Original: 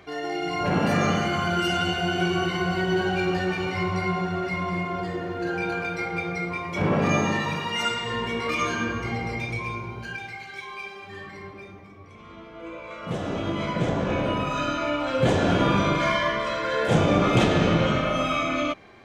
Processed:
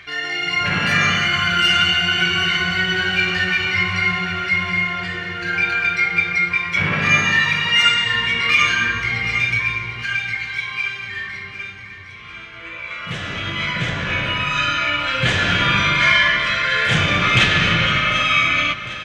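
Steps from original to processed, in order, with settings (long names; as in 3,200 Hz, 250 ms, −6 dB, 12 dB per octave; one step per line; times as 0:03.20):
drawn EQ curve 140 Hz 0 dB, 260 Hz −10 dB, 810 Hz −8 dB, 1,800 Hz +12 dB, 2,900 Hz +11 dB, 11,000 Hz −1 dB
repeating echo 751 ms, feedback 59%, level −14 dB
level +3 dB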